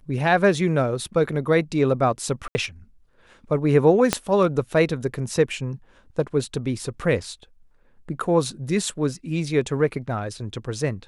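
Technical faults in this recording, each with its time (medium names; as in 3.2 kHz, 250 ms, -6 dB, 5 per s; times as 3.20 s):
2.48–2.55 s: dropout 70 ms
4.13 s: pop -3 dBFS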